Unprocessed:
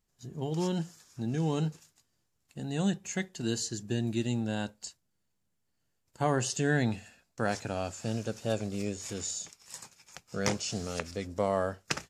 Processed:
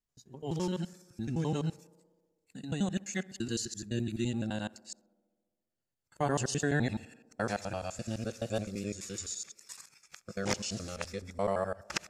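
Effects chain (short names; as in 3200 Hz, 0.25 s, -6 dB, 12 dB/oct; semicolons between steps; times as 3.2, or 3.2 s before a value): local time reversal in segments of 85 ms; spectral noise reduction 10 dB; tape echo 66 ms, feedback 84%, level -22 dB, low-pass 1600 Hz; gain -2 dB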